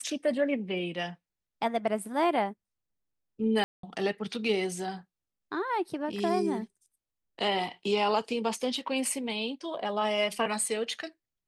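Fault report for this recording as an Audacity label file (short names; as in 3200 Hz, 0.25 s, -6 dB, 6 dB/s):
3.640000	3.830000	gap 0.193 s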